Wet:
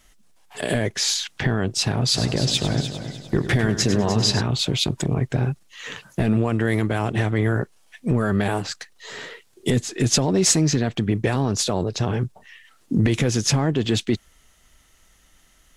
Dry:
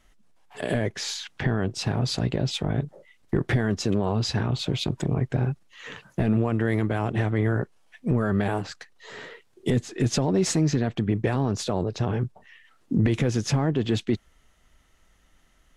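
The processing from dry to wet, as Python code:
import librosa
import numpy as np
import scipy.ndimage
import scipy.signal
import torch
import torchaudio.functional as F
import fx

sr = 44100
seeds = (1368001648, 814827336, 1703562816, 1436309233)

y = fx.high_shelf(x, sr, hz=3400.0, db=10.5)
y = fx.echo_heads(y, sr, ms=100, heads='first and third', feedback_pct=48, wet_db=-11, at=(2.14, 4.4), fade=0.02)
y = y * 10.0 ** (2.5 / 20.0)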